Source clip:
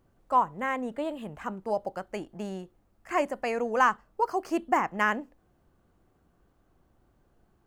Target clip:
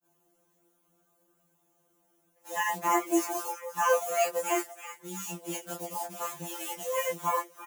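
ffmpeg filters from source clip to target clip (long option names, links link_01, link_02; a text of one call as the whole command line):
ffmpeg -i in.wav -filter_complex "[0:a]areverse,asplit=2[link_01][link_02];[link_02]acrusher=bits=6:mix=0:aa=0.000001,volume=-3.5dB[link_03];[link_01][link_03]amix=inputs=2:normalize=0,aexciter=amount=5.4:drive=1.3:freq=5800,alimiter=limit=-13.5dB:level=0:latency=1:release=22,highpass=frequency=560:poles=1,aecho=1:1:6.1:0.41,flanger=delay=18.5:depth=5.6:speed=0.62,asplit=2[link_04][link_05];[link_05]asplit=3[link_06][link_07][link_08];[link_06]adelay=327,afreqshift=140,volume=-14dB[link_09];[link_07]adelay=654,afreqshift=280,volume=-23.4dB[link_10];[link_08]adelay=981,afreqshift=420,volume=-32.7dB[link_11];[link_09][link_10][link_11]amix=inputs=3:normalize=0[link_12];[link_04][link_12]amix=inputs=2:normalize=0,afftfilt=real='re*2.83*eq(mod(b,8),0)':imag='im*2.83*eq(mod(b,8),0)':win_size=2048:overlap=0.75,volume=4dB" out.wav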